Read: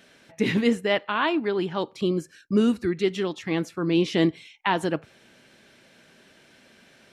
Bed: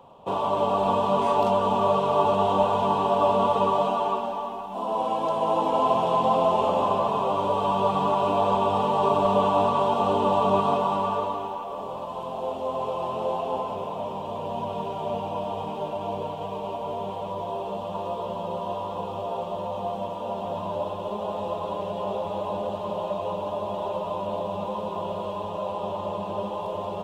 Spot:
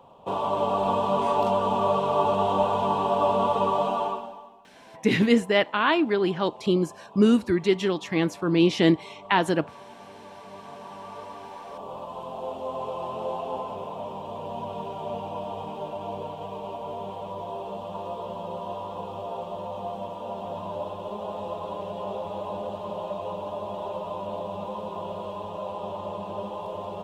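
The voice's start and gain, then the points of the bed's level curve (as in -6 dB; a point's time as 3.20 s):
4.65 s, +2.0 dB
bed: 4.04 s -1.5 dB
4.70 s -23.5 dB
10.44 s -23.5 dB
11.92 s -3.5 dB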